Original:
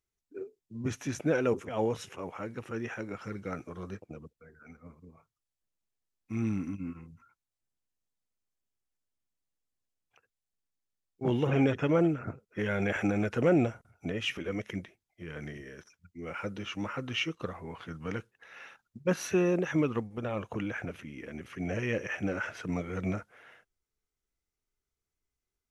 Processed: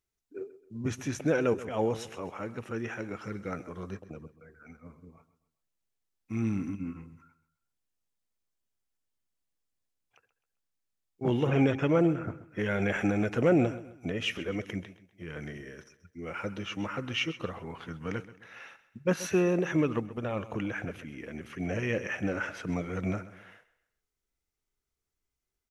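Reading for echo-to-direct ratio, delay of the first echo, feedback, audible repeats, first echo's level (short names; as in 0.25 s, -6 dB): -15.5 dB, 0.131 s, 38%, 3, -16.0 dB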